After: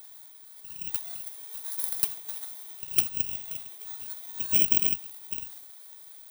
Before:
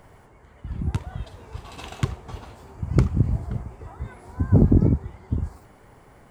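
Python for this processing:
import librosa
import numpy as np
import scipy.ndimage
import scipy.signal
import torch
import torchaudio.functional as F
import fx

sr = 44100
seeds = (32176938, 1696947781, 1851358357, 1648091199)

y = fx.bit_reversed(x, sr, seeds[0], block=16)
y = np.diff(y, prepend=0.0)
y = fx.notch(y, sr, hz=1100.0, q=23.0)
y = y * librosa.db_to_amplitude(7.0)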